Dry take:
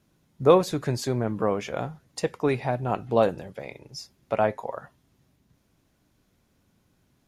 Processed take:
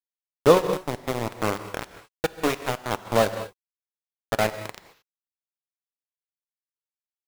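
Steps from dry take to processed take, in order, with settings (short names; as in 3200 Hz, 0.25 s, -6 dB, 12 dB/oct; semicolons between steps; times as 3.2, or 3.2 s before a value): sample gate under -20 dBFS; non-linear reverb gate 0.25 s flat, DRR 5.5 dB; transient shaper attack +2 dB, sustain -7 dB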